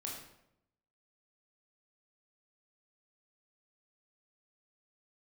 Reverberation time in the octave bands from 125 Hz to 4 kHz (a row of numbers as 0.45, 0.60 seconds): 1.0, 0.95, 0.85, 0.75, 0.65, 0.55 seconds